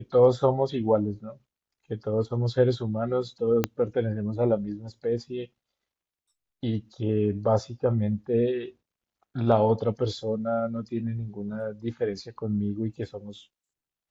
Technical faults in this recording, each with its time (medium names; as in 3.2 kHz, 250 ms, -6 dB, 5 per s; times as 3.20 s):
3.64 s: pop -9 dBFS